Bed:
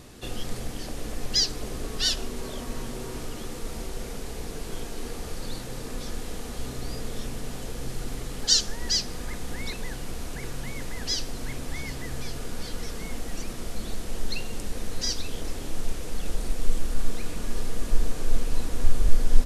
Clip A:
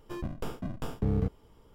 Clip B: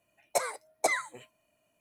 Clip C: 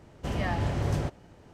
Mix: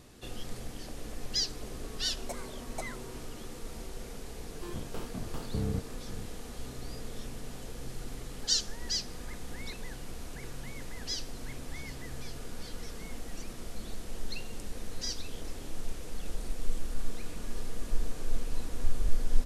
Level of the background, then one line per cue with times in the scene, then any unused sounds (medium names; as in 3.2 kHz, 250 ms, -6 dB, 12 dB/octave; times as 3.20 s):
bed -7.5 dB
1.94 s: add B -13 dB
4.52 s: add A -4.5 dB + chunks repeated in reverse 475 ms, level -11.5 dB
not used: C